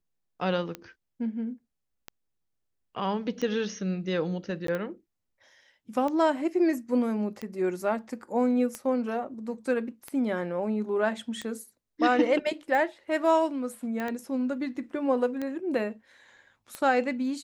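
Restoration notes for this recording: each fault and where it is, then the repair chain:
tick 45 rpm -20 dBFS
4.67–4.68 s: dropout 13 ms
14.00 s: pop -20 dBFS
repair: de-click; interpolate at 4.67 s, 13 ms

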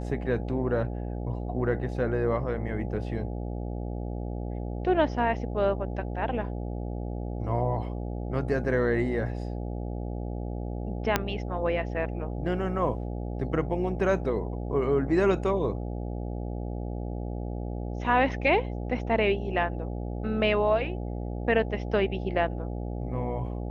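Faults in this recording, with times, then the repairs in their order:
buzz 60 Hz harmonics 14 -33 dBFS
11.16 s: pop -7 dBFS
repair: de-click; de-hum 60 Hz, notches 14

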